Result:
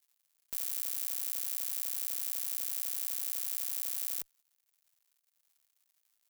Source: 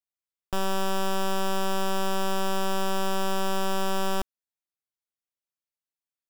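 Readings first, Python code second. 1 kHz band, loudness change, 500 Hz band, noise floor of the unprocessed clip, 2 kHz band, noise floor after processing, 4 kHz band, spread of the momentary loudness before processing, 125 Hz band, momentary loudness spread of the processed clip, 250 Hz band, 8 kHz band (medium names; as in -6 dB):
-32.5 dB, -4.0 dB, under -35 dB, under -85 dBFS, -19.5 dB, -79 dBFS, -13.0 dB, 3 LU, no reading, 3 LU, under -35 dB, 0.0 dB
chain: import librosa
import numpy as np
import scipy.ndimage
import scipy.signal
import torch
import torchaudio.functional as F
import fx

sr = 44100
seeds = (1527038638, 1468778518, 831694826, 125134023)

y = fx.lower_of_two(x, sr, delay_ms=0.45)
y = fx.dmg_crackle(y, sr, seeds[0], per_s=240.0, level_db=-60.0)
y = fx.riaa(y, sr, side='recording')
y = y * 10.0 ** (-8.5 / 20.0)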